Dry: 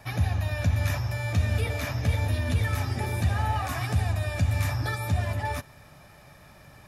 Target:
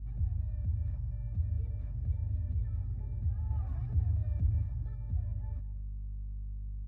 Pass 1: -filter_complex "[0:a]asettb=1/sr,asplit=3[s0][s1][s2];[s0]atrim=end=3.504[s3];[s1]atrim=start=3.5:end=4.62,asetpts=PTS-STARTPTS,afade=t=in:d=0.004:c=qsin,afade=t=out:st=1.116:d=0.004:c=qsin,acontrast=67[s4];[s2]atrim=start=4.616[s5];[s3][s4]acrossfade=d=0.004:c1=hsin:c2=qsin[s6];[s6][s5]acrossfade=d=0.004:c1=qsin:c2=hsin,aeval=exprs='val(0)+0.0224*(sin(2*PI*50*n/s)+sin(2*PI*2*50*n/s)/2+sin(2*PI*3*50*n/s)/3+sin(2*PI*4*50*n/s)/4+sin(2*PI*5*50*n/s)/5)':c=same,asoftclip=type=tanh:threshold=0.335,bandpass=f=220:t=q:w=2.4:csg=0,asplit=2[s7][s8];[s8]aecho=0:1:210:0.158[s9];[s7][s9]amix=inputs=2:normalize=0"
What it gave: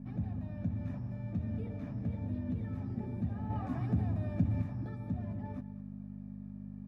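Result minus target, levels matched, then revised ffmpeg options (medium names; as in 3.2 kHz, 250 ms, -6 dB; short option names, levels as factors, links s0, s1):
250 Hz band +17.0 dB; saturation: distortion -9 dB
-filter_complex "[0:a]asettb=1/sr,asplit=3[s0][s1][s2];[s0]atrim=end=3.504[s3];[s1]atrim=start=3.5:end=4.62,asetpts=PTS-STARTPTS,afade=t=in:d=0.004:c=qsin,afade=t=out:st=1.116:d=0.004:c=qsin,acontrast=67[s4];[s2]atrim=start=4.616[s5];[s3][s4]acrossfade=d=0.004:c1=hsin:c2=qsin[s6];[s6][s5]acrossfade=d=0.004:c1=qsin:c2=hsin,aeval=exprs='val(0)+0.0224*(sin(2*PI*50*n/s)+sin(2*PI*2*50*n/s)/2+sin(2*PI*3*50*n/s)/3+sin(2*PI*4*50*n/s)/4+sin(2*PI*5*50*n/s)/5)':c=same,asoftclip=type=tanh:threshold=0.15,bandpass=f=58:t=q:w=2.4:csg=0,asplit=2[s7][s8];[s8]aecho=0:1:210:0.158[s9];[s7][s9]amix=inputs=2:normalize=0"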